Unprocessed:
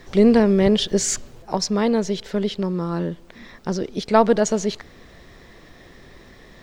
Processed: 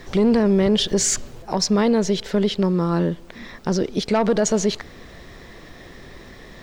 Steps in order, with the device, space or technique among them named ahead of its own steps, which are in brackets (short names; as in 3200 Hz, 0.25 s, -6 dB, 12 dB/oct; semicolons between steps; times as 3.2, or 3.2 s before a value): soft clipper into limiter (soft clip -8 dBFS, distortion -18 dB; limiter -15.5 dBFS, peak gain reduction 7 dB); gain +4.5 dB